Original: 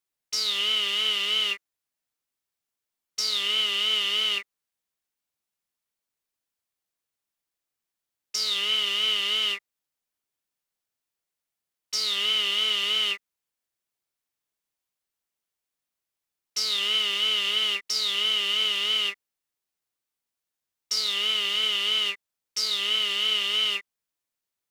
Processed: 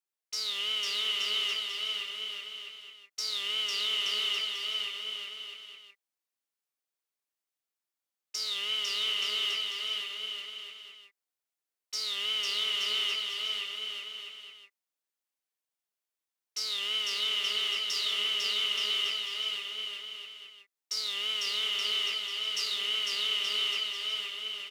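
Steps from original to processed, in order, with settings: HPF 270 Hz 12 dB/oct; bouncing-ball echo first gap 0.5 s, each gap 0.75×, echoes 5; gain -7 dB

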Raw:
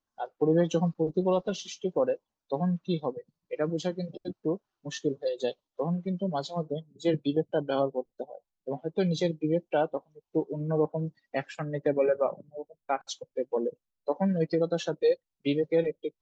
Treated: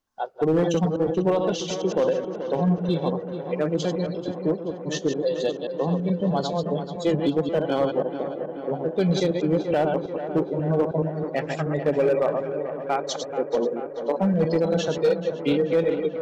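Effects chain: reverse delay 0.107 s, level -6.5 dB; 9.71–10.44 low shelf 170 Hz +11 dB; in parallel at -2 dB: limiter -23.5 dBFS, peak gain reduction 11.5 dB; on the sum: overloaded stage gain 16 dB; tape echo 0.434 s, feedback 86%, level -8 dB, low-pass 2300 Hz; gain +1 dB

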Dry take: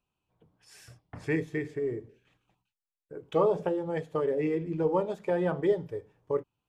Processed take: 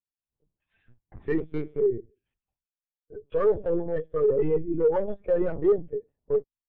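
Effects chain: 1.38–1.8 minimum comb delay 0.32 ms; in parallel at -1 dB: limiter -22 dBFS, peak gain reduction 8 dB; on the sum: LPC vocoder at 8 kHz pitch kept; hard clip -19.5 dBFS, distortion -11 dB; spectral expander 1.5:1; gain +5.5 dB

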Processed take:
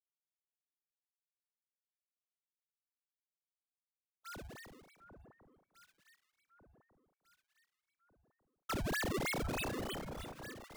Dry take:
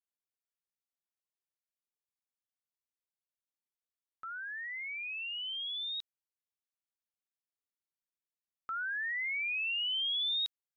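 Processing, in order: LPF 1900 Hz 12 dB/oct; gate -41 dBFS, range -56 dB; tilt shelf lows -7 dB, about 750 Hz; compressor 2:1, threshold -51 dBFS, peak gain reduction 10 dB; 5.98–8.84 overdrive pedal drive 36 dB, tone 1100 Hz, clips at -35.5 dBFS; decimation with a swept rate 32×, swing 160% 3.2 Hz; echo with dull and thin repeats by turns 0.749 s, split 1400 Hz, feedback 63%, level -9 dB; gain +7 dB

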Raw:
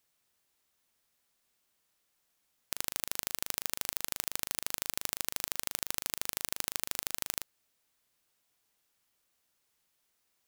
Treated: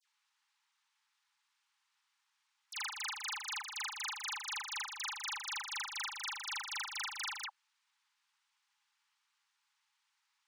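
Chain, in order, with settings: local time reversal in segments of 59 ms; brick-wall FIR high-pass 790 Hz; air absorption 100 m; dispersion lows, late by 71 ms, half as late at 2000 Hz; gain +4 dB

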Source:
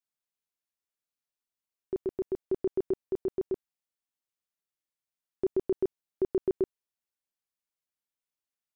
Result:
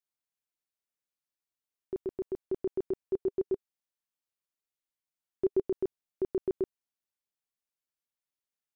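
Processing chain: 2.98–5.64 dynamic EQ 400 Hz, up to +5 dB, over -40 dBFS, Q 3.9; gain -3 dB

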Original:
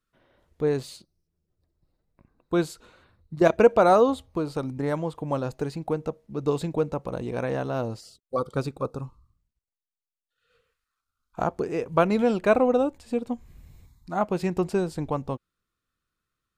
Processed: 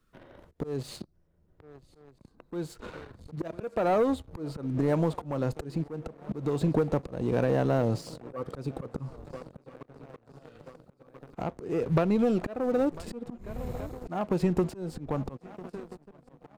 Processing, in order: tilt shelf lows +4 dB; compressor 5:1, threshold -28 dBFS, peak gain reduction 17.5 dB; swung echo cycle 1.333 s, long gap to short 3:1, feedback 50%, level -23.5 dB; sample leveller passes 2; auto swell 0.357 s; three-band squash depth 40%; gain +1.5 dB

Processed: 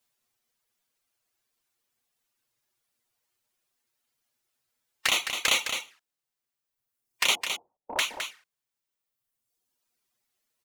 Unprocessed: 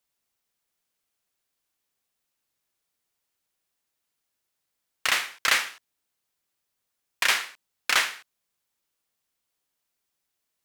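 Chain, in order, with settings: 7.35–7.99 Chebyshev low-pass 880 Hz, order 5; harmonic-percussive split harmonic +4 dB; reverb removal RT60 1.6 s; in parallel at +2 dB: limiter -14.5 dBFS, peak gain reduction 8.5 dB; on the sum: envelope flanger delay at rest 8.4 ms, full sweep at -18 dBFS; on a send: echo 0.212 s -7.5 dB; on the sum: gain -2.5 dB

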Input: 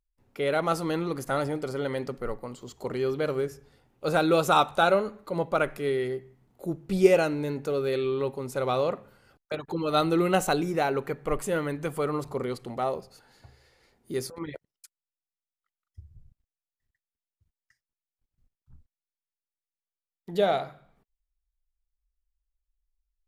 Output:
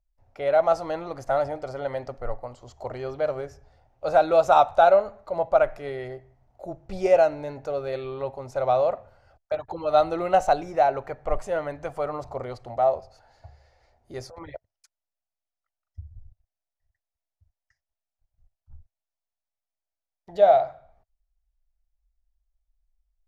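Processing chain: EQ curve 100 Hz 0 dB, 160 Hz -18 dB, 440 Hz -14 dB, 650 Hz +4 dB, 1100 Hz -9 dB, 1800 Hz -10 dB, 3400 Hz -15 dB, 5900 Hz -10 dB, 9400 Hz -23 dB, 14000 Hz -27 dB; gain +7.5 dB

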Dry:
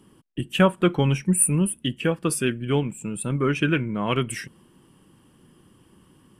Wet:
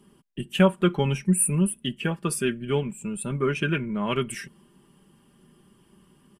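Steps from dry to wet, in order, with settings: comb 5 ms, depth 56%; gain -3.5 dB

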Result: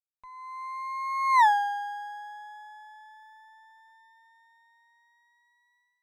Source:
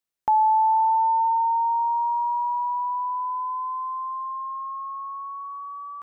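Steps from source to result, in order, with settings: minimum comb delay 1.3 ms; Doppler pass-by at 1.42, 53 m/s, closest 3.2 m; AGC gain up to 9 dB; gain -2 dB

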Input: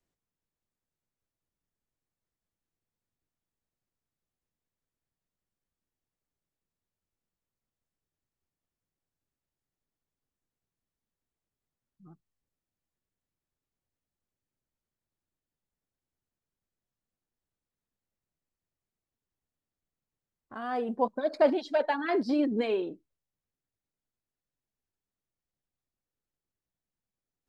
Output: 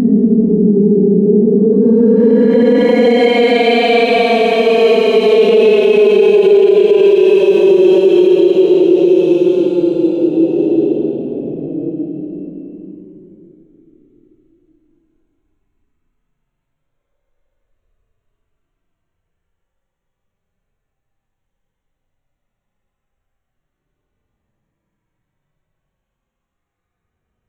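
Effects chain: Wiener smoothing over 9 samples; Paulstretch 29×, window 0.05 s, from 22.51; dynamic EQ 370 Hz, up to +4 dB, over -38 dBFS, Q 1.5; maximiser +21 dB; gain -1 dB

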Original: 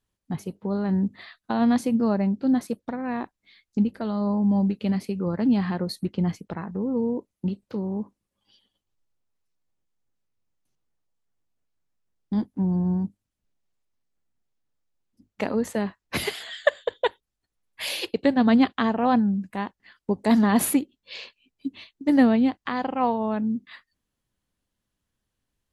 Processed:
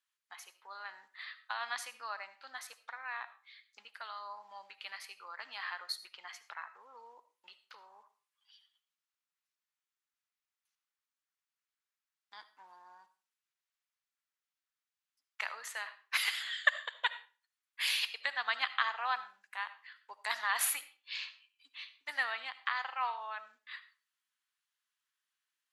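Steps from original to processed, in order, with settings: HPF 1200 Hz 24 dB/oct; high shelf 4800 Hz -6 dB; reverb RT60 0.35 s, pre-delay 35 ms, DRR 13.5 dB

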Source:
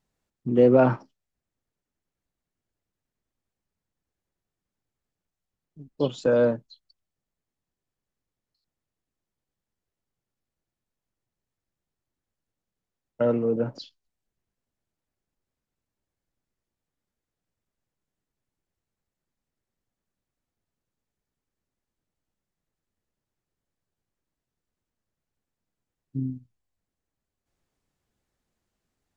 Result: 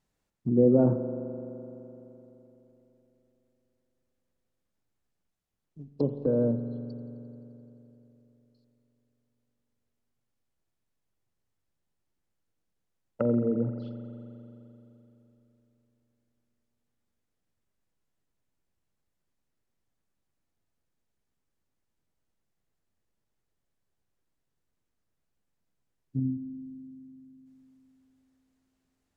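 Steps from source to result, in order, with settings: treble ducked by the level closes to 380 Hz, closed at -26 dBFS; spring tank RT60 3.5 s, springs 42 ms, chirp 45 ms, DRR 8 dB

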